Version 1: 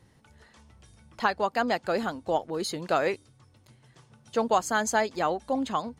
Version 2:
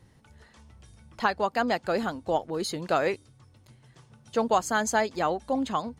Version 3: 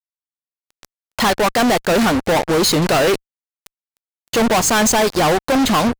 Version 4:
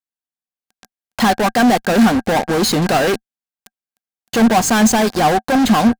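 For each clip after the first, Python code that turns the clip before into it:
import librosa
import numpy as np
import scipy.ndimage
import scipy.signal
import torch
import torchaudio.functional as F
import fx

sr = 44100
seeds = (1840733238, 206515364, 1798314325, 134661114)

y1 = fx.low_shelf(x, sr, hz=140.0, db=4.5)
y2 = fx.fuzz(y1, sr, gain_db=41.0, gate_db=-42.0)
y2 = fx.leveller(y2, sr, passes=2)
y2 = y2 * 10.0 ** (-1.5 / 20.0)
y3 = fx.small_body(y2, sr, hz=(220.0, 750.0, 1600.0), ring_ms=50, db=9)
y3 = y3 * 10.0 ** (-2.0 / 20.0)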